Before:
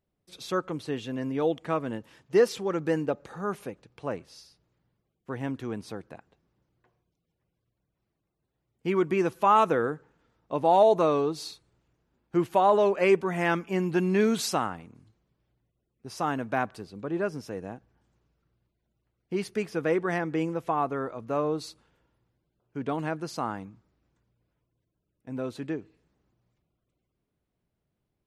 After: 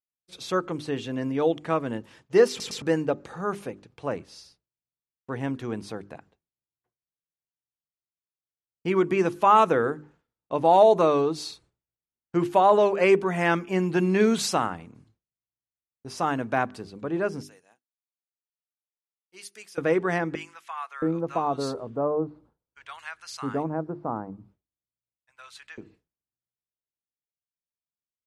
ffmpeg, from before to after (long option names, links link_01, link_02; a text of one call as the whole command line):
ffmpeg -i in.wav -filter_complex "[0:a]asettb=1/sr,asplit=3[link_01][link_02][link_03];[link_01]atrim=end=17.434[link_04];[link_02]atrim=start=17.43:end=19.78,asetpts=PTS-STARTPTS,afade=type=in:duration=0.004:curve=qsin,afade=type=out:start_time=2.346:duration=0.004:curve=qsin,aderivative[link_05];[link_03]atrim=start=19.776[link_06];[link_04][link_05]acrossfade=duration=0.004:curve1=hsin:curve2=qsin[link_07];[link_07][link_06]acrossfade=duration=0.004:curve1=qsin:curve2=hsin,asettb=1/sr,asplit=3[link_08][link_09][link_10];[link_08]atrim=end=20.354[link_11];[link_09]atrim=start=20.35:end=25.78,asetpts=PTS-STARTPTS,afade=type=in:duration=0.004:curve=qsin,afade=type=out:start_time=5.426:duration=0.004:curve=qsin,acrossover=split=1200[link_12][link_13];[link_12]adelay=670[link_14];[link_14][link_13]amix=inputs=2:normalize=0,atrim=end_sample=239463[link_15];[link_10]atrim=start=25.776[link_16];[link_11][link_15]acrossfade=duration=0.004:curve1=hsin:curve2=qsin[link_17];[link_17][link_16]acrossfade=duration=0.004:curve1=qsin:curve2=hsin,asplit=4[link_18][link_19][link_20][link_21];[link_18]atrim=end=2.602[link_22];[link_19]atrim=start=2.488:end=2.602[link_23];[link_20]atrim=start=2.488:end=2.602[link_24];[link_21]atrim=start=2.818[link_25];[link_22][link_23]acrossfade=duration=0.004:curve1=hsin:curve2=hsin[link_26];[link_26][link_24]acrossfade=duration=0.004:curve1=hsin:curve2=hsin[link_27];[link_27][link_25]acrossfade=duration=0.004:curve1=hsin:curve2=hsin,lowpass=frequency=11000:width=0.5412,lowpass=frequency=11000:width=1.3066,bandreject=frequency=50:width_type=h:width=6,bandreject=frequency=100:width_type=h:width=6,bandreject=frequency=150:width_type=h:width=6,bandreject=frequency=200:width_type=h:width=6,bandreject=frequency=250:width_type=h:width=6,bandreject=frequency=300:width_type=h:width=6,bandreject=frequency=350:width_type=h:width=6,bandreject=frequency=400:width_type=h:width=6,agate=range=-33dB:threshold=-54dB:ratio=3:detection=peak,volume=3dB" out.wav